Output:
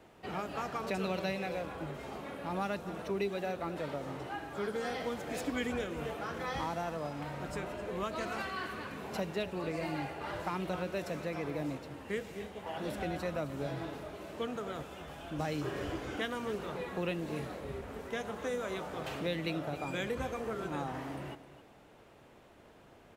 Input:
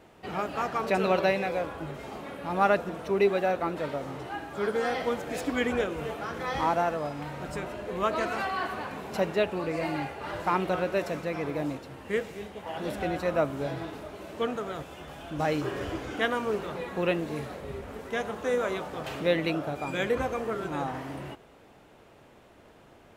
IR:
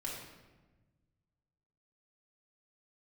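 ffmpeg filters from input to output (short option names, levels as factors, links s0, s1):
-filter_complex "[0:a]asettb=1/sr,asplit=3[s0][s1][s2];[s0]atrim=end=8.424[s3];[s1]atrim=start=8.42:end=9.01,asetpts=PTS-STARTPTS,afade=t=in:d=0.004:c=qsin,afade=t=out:st=0.586:d=0.004:c=qsin,equalizer=f=780:t=o:w=0.74:g=-10[s4];[s2]atrim=start=9.006[s5];[s3][s4]acrossfade=d=0.004:c1=hsin:c2=qsin[s6];[s6][s5]acrossfade=d=0.004:c1=qsin:c2=hsin,acrossover=split=230|3000[s7][s8][s9];[s8]acompressor=threshold=0.0282:ratio=6[s10];[s7][s10][s9]amix=inputs=3:normalize=0,aecho=1:1:262:0.188,volume=0.668"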